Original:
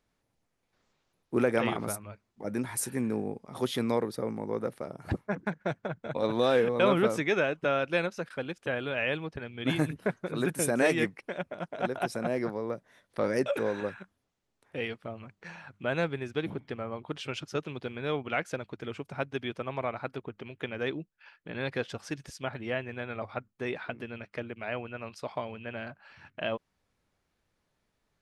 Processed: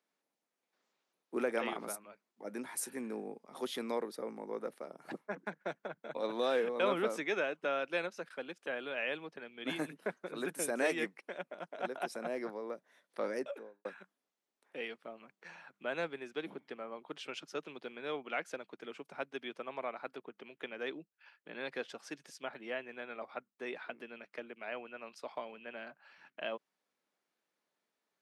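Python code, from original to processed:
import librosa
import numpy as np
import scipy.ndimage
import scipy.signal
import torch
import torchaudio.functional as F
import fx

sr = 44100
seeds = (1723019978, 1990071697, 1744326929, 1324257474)

y = fx.studio_fade_out(x, sr, start_s=13.21, length_s=0.64)
y = scipy.signal.sosfilt(scipy.signal.bessel(8, 310.0, 'highpass', norm='mag', fs=sr, output='sos'), y)
y = y * 10.0 ** (-6.0 / 20.0)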